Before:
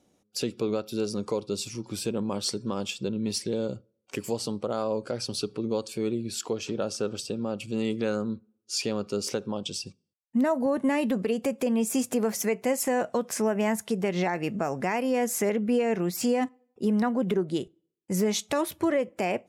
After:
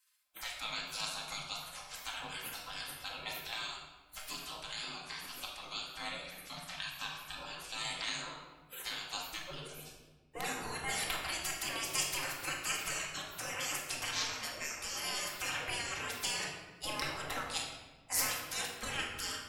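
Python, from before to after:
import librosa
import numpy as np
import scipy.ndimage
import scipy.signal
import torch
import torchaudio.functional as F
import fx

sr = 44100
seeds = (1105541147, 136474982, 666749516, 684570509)

y = fx.spec_gate(x, sr, threshold_db=-30, keep='weak')
y = fx.low_shelf_res(y, sr, hz=620.0, db=8.5, q=3.0, at=(9.28, 9.71))
y = fx.room_shoebox(y, sr, seeds[0], volume_m3=920.0, walls='mixed', distance_m=2.1)
y = y * librosa.db_to_amplitude(7.5)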